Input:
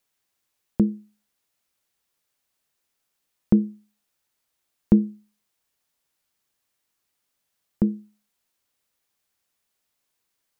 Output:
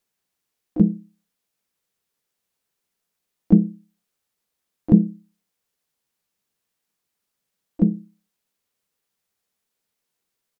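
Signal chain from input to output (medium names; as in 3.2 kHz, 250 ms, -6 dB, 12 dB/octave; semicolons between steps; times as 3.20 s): small resonant body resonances 200/460 Hz, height 7 dB, ringing for 40 ms; harmony voices -3 st -3 dB, +7 st -11 dB; trim -4.5 dB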